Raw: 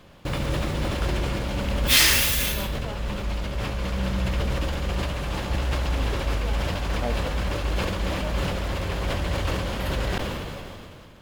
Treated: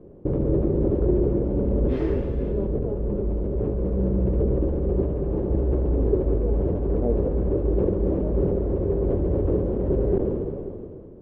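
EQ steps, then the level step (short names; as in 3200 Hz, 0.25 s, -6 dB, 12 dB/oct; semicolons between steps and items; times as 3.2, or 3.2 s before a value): synth low-pass 400 Hz, resonance Q 4.4; +2.0 dB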